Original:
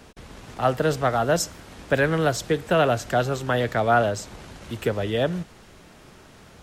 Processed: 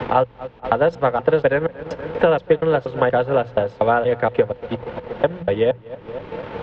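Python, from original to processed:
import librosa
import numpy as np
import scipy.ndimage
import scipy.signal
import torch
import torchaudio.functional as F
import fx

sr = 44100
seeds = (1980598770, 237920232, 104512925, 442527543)

y = fx.block_reorder(x, sr, ms=238.0, group=3)
y = fx.echo_filtered(y, sr, ms=237, feedback_pct=57, hz=2400.0, wet_db=-16.5)
y = fx.transient(y, sr, attack_db=5, sustain_db=-8)
y = scipy.signal.sosfilt(scipy.signal.butter(4, 3300.0, 'lowpass', fs=sr, output='sos'), y)
y = fx.hum_notches(y, sr, base_hz=60, count=3)
y = fx.small_body(y, sr, hz=(500.0, 890.0), ring_ms=45, db=11)
y = fx.band_squash(y, sr, depth_pct=70)
y = F.gain(torch.from_numpy(y), -1.0).numpy()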